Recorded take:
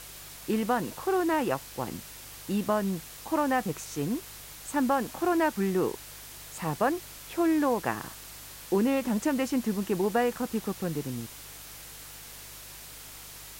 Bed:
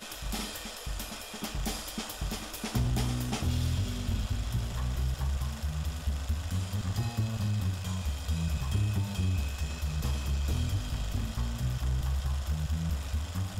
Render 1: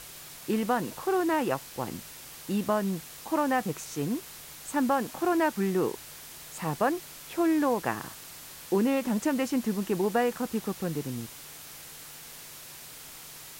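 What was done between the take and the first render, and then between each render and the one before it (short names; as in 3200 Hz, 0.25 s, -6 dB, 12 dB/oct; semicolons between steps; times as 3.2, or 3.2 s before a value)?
de-hum 50 Hz, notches 2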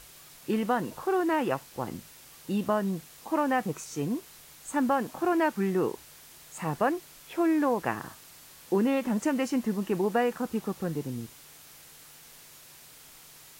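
noise print and reduce 6 dB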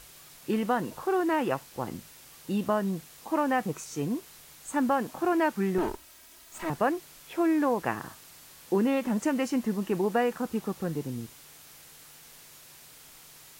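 5.78–6.7 minimum comb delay 3.1 ms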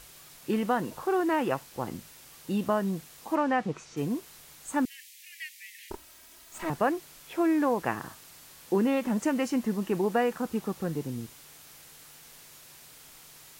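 3.35–3.96 LPF 6400 Hz -> 3700 Hz; 4.85–5.91 steep high-pass 1900 Hz 96 dB/oct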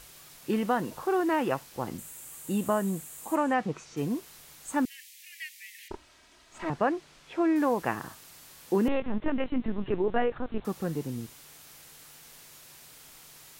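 1.98–3.54 resonant high shelf 6400 Hz +6 dB, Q 3; 5.88–7.56 air absorption 92 m; 8.88–10.65 LPC vocoder at 8 kHz pitch kept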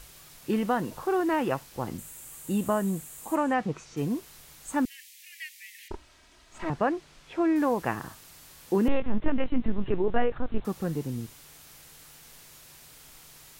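low shelf 91 Hz +9.5 dB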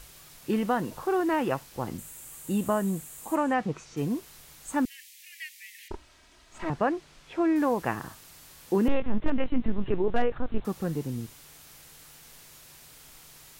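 hard clip -13.5 dBFS, distortion -31 dB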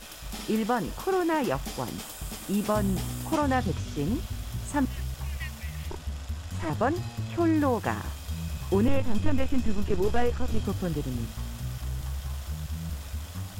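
add bed -3 dB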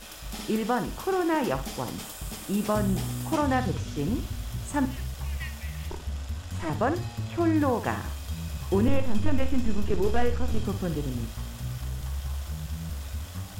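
flutter echo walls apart 9.8 m, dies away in 0.31 s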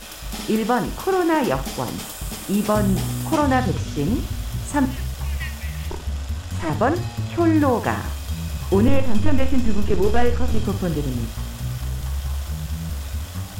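gain +6.5 dB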